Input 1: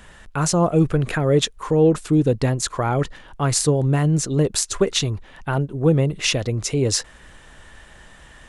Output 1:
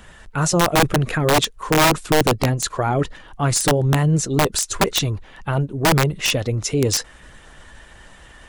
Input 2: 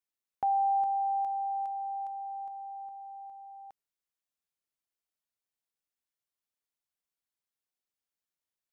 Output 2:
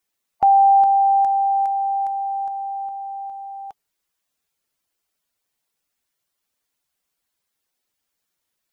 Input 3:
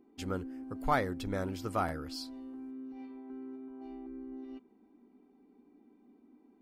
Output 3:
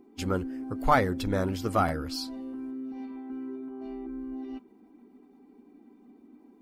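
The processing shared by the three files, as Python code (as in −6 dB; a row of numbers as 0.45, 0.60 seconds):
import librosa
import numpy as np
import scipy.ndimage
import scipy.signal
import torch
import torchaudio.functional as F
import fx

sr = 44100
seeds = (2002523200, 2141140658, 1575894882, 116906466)

y = fx.spec_quant(x, sr, step_db=15)
y = (np.mod(10.0 ** (10.5 / 20.0) * y + 1.0, 2.0) - 1.0) / 10.0 ** (10.5 / 20.0)
y = y * 10.0 ** (-9 / 20.0) / np.max(np.abs(y))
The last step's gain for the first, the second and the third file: +1.5, +14.0, +7.5 decibels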